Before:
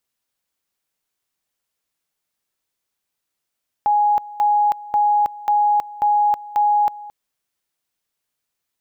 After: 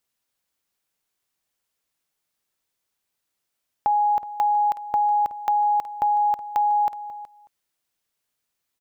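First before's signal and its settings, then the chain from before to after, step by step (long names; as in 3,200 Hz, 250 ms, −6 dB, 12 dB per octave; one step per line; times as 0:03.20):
tone at two levels in turn 831 Hz −13 dBFS, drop 19 dB, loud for 0.32 s, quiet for 0.22 s, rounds 6
downward compressor 2.5 to 1, threshold −20 dBFS
single-tap delay 371 ms −16.5 dB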